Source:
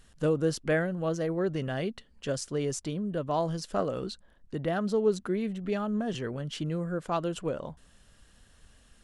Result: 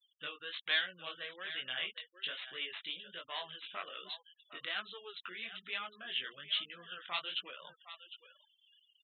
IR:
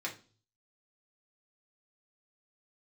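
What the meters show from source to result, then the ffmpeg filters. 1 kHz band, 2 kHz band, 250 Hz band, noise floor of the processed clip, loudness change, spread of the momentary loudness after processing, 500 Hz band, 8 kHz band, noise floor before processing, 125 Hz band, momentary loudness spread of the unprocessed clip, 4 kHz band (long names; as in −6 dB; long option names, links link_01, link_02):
−11.0 dB, +0.5 dB, −30.0 dB, −76 dBFS, −8.5 dB, 13 LU, −23.0 dB, below −35 dB, −61 dBFS, −33.5 dB, 8 LU, +7.0 dB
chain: -filter_complex "[0:a]acrossover=split=1100[link_01][link_02];[link_01]acompressor=threshold=-37dB:ratio=6[link_03];[link_02]aeval=exprs='0.1*(cos(1*acos(clip(val(0)/0.1,-1,1)))-cos(1*PI/2))+0.01*(cos(2*acos(clip(val(0)/0.1,-1,1)))-cos(2*PI/2))+0.0316*(cos(4*acos(clip(val(0)/0.1,-1,1)))-cos(4*PI/2))':channel_layout=same[link_04];[link_03][link_04]amix=inputs=2:normalize=0,aderivative,aresample=8000,aresample=44100,highshelf=frequency=2000:gain=10.5,asplit=2[link_05][link_06];[link_06]aecho=0:1:757:0.237[link_07];[link_05][link_07]amix=inputs=2:normalize=0,flanger=delay=15.5:depth=7.7:speed=1.2,afftfilt=real='re*gte(hypot(re,im),0.000891)':imag='im*gte(hypot(re,im),0.000891)':win_size=1024:overlap=0.75,volume=11dB"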